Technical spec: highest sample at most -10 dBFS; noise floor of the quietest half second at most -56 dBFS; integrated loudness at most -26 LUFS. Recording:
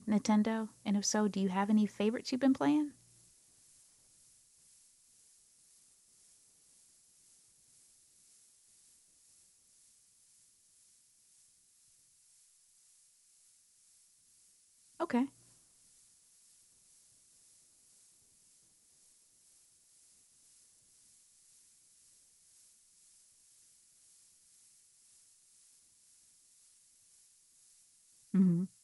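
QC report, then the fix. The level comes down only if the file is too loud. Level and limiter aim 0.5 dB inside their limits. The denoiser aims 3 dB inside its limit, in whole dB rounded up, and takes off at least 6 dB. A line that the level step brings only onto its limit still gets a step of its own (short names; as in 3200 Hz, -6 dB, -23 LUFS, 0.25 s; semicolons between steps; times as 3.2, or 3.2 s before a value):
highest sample -19.0 dBFS: OK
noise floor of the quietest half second -68 dBFS: OK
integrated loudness -32.5 LUFS: OK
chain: none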